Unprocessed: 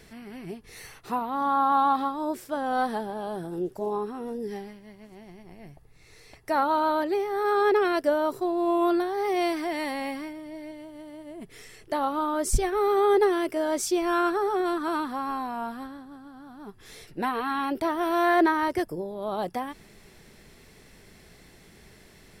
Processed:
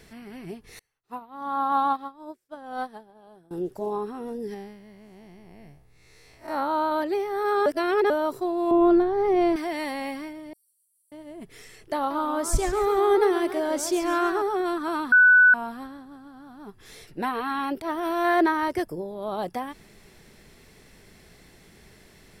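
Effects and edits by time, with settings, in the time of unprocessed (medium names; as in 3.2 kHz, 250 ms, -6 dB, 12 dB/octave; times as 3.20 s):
0.79–3.51 s: upward expansion 2.5:1, over -43 dBFS
4.54–6.92 s: spectral blur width 106 ms
7.66–8.10 s: reverse
8.71–9.56 s: tilt EQ -4 dB/octave
10.53–11.12 s: inverse Chebyshev high-pass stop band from 1.6 kHz, stop band 80 dB
11.96–14.42 s: modulated delay 139 ms, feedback 37%, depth 197 cents, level -10 dB
15.12–15.54 s: bleep 1.49 kHz -11.5 dBFS
17.75–18.25 s: transient shaper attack -11 dB, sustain -1 dB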